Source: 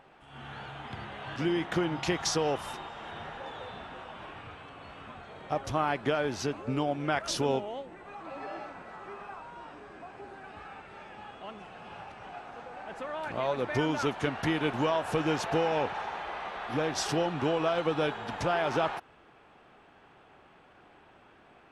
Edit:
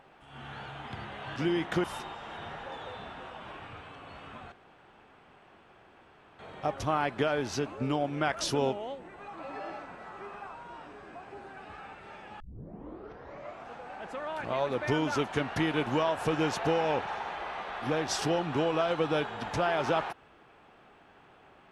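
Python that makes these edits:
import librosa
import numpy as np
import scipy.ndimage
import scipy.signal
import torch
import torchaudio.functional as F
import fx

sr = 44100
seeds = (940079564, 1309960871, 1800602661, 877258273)

y = fx.edit(x, sr, fx.cut(start_s=1.84, length_s=0.74),
    fx.insert_room_tone(at_s=5.26, length_s=1.87),
    fx.tape_start(start_s=11.27, length_s=1.29), tone=tone)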